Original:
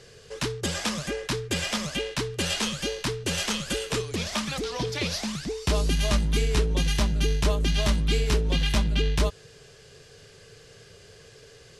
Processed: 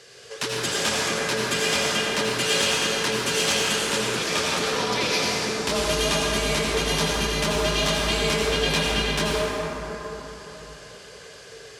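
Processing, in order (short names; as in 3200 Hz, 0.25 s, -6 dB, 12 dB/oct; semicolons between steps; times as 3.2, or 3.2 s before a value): HPF 620 Hz 6 dB/oct; soft clip -19 dBFS, distortion -22 dB; reverb RT60 4.2 s, pre-delay 73 ms, DRR -5 dB; gain +4 dB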